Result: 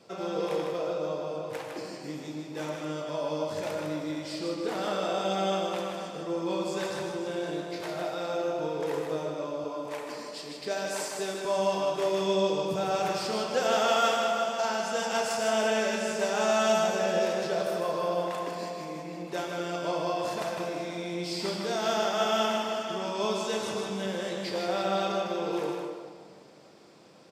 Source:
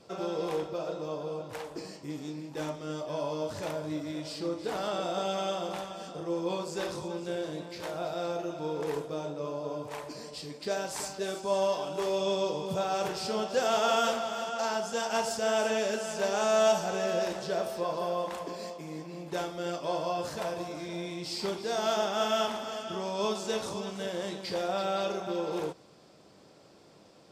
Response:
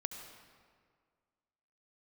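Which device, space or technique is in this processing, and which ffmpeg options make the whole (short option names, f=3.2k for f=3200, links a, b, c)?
PA in a hall: -filter_complex "[0:a]highpass=120,equalizer=f=2.1k:t=o:w=0.77:g=3,aecho=1:1:155:0.531[a];[1:a]atrim=start_sample=2205[b];[a][b]afir=irnorm=-1:irlink=0,asettb=1/sr,asplit=3[c][d][e];[c]atrim=end=9.644[f];[d]atrim=start=9.64:end=11.45,asetpts=PTS-STARTPTS,afade=t=in:d=0.004:c=qsin,afade=t=out:st=1.806:d=0.004:c=qsin,highpass=190[g];[e]atrim=start=11.446[h];[f][g]acrossfade=d=0.004:c1=hsin:c2=qsin[i];[i][h]acrossfade=d=0.004:c1=qsin:c2=hsin,volume=1.5dB"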